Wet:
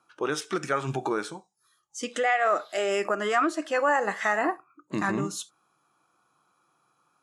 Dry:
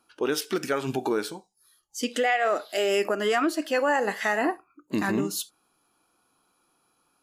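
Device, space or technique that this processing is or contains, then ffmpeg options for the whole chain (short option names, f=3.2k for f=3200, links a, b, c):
car door speaker: -af "highpass=110,equalizer=f=140:t=q:w=4:g=6,equalizer=f=250:t=q:w=4:g=-8,equalizer=f=430:t=q:w=4:g=-4,equalizer=f=1.2k:t=q:w=4:g=6,equalizer=f=2.9k:t=q:w=4:g=-5,equalizer=f=4.6k:t=q:w=4:g=-8,lowpass=f=8.8k:w=0.5412,lowpass=f=8.8k:w=1.3066"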